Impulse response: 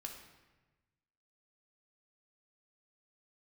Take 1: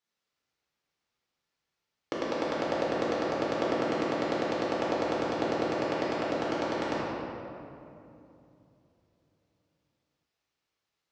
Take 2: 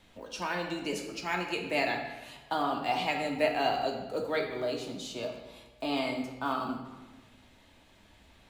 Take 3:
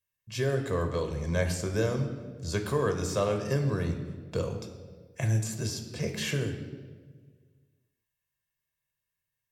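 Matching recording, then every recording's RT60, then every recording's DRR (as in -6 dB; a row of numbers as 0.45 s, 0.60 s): 2; 2.7 s, 1.2 s, 1.6 s; -6.5 dB, 1.5 dB, 5.0 dB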